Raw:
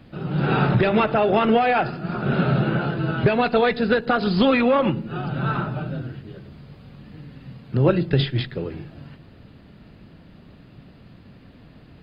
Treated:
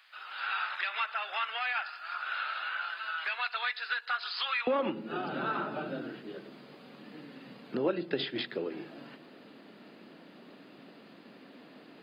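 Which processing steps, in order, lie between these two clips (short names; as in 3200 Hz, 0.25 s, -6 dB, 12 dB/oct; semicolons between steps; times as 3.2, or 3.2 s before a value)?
HPF 1200 Hz 24 dB/oct, from 4.67 s 250 Hz; compressor 2:1, threshold -34 dBFS, peak gain reduction 11.5 dB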